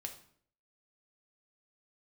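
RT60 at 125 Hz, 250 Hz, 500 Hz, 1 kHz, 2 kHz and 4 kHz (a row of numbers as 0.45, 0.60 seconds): 0.70, 0.65, 0.65, 0.55, 0.50, 0.45 seconds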